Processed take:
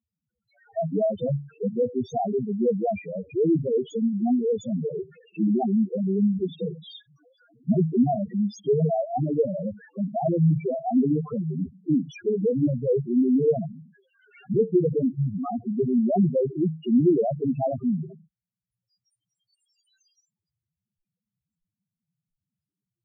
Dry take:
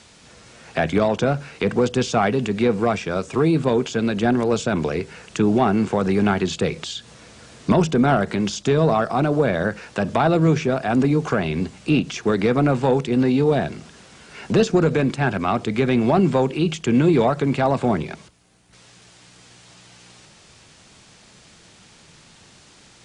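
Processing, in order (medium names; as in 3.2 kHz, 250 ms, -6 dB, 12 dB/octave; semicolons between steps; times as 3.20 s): spectral noise reduction 27 dB; loudest bins only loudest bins 2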